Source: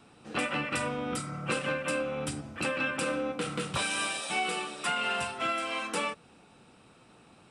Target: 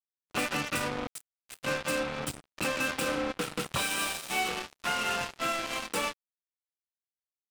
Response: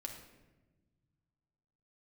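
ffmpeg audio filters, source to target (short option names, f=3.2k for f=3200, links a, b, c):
-filter_complex "[0:a]asettb=1/sr,asplit=3[a][b][c];[a]atrim=end=1.074[d];[b]atrim=start=1.07:end=1.63,asetpts=PTS-STARTPTS,afade=t=in:d=0.004:c=qsin,afade=t=out:st=0.556:d=0.004:c=qsin,aderivative[e];[c]atrim=start=1.626[f];[d][e]acrossfade=d=0.004:c1=hsin:c2=qsin[g];[g][f]acrossfade=d=0.004:c1=qsin:c2=hsin,asettb=1/sr,asplit=3[h][i][j];[h]atrim=end=4.484[k];[i]atrim=start=4.48:end=5.67,asetpts=PTS-STARTPTS,afade=t=in:d=0.004:c=qsin,afade=t=out:st=1.186:d=0.004:c=qsin,acrossover=split=3700[l][m];[m]acompressor=threshold=-53dB:ratio=4:attack=1:release=60[n];[l][n]amix=inputs=2:normalize=0[o];[j]atrim=start=5.666[p];[k][o]acrossfade=d=0.004:c1=hsin:c2=qsin[q];[q][p]acrossfade=d=0.004:c1=qsin:c2=hsin,acrusher=bits=4:mix=0:aa=0.5"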